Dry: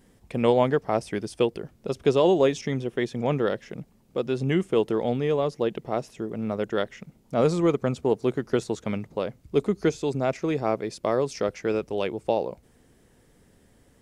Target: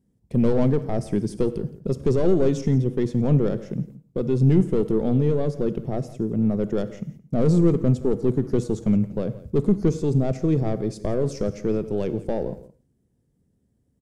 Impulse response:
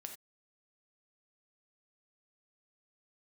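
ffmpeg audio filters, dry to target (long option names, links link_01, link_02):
-filter_complex "[0:a]highpass=frequency=150:poles=1,aeval=exprs='(tanh(10*val(0)+0.15)-tanh(0.15))/10':channel_layout=same,tiltshelf=frequency=640:gain=9.5,agate=range=-18dB:threshold=-46dB:ratio=16:detection=peak,bass=frequency=250:gain=9,treble=frequency=4000:gain=10,aecho=1:1:169:0.126,asplit=2[link_01][link_02];[1:a]atrim=start_sample=2205,asetrate=34398,aresample=44100[link_03];[link_02][link_03]afir=irnorm=-1:irlink=0,volume=-2.5dB[link_04];[link_01][link_04]amix=inputs=2:normalize=0,volume=-4dB"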